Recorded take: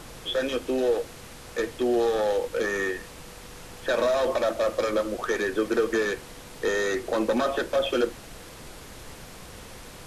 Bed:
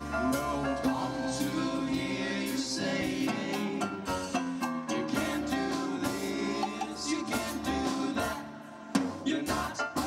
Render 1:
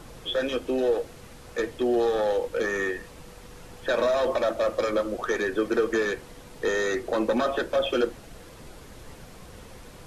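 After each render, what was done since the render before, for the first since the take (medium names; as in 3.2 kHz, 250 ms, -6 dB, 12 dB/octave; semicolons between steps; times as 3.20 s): noise reduction 6 dB, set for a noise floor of -44 dBFS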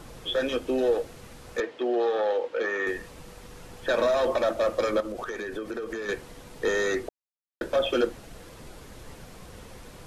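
1.60–2.87 s: band-pass 360–3700 Hz; 5.00–6.09 s: compression, threshold -30 dBFS; 7.09–7.61 s: mute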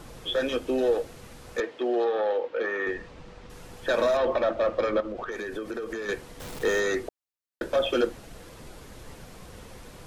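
2.04–3.50 s: distance through air 130 m; 4.17–5.32 s: low-pass 3.4 kHz; 6.40–6.80 s: jump at every zero crossing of -36.5 dBFS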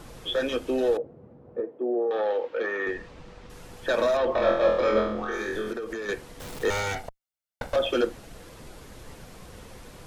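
0.97–2.11 s: Butterworth band-pass 250 Hz, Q 0.5; 4.34–5.73 s: flutter echo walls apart 4 m, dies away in 0.66 s; 6.70–7.76 s: comb filter that takes the minimum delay 1.4 ms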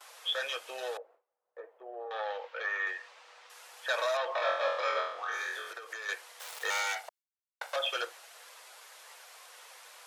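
gate with hold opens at -38 dBFS; Bessel high-pass 1 kHz, order 6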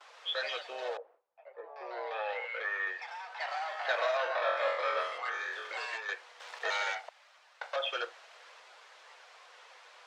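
ever faster or slower copies 134 ms, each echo +3 st, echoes 2, each echo -6 dB; distance through air 140 m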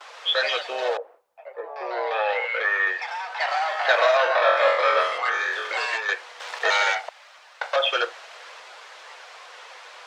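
trim +12 dB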